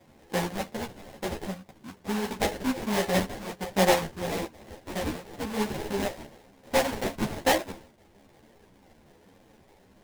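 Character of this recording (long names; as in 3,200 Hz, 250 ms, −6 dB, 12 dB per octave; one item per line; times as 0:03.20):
phaser sweep stages 6, 1.1 Hz, lowest notch 390–1,800 Hz
aliases and images of a low sample rate 1,300 Hz, jitter 20%
a shimmering, thickened sound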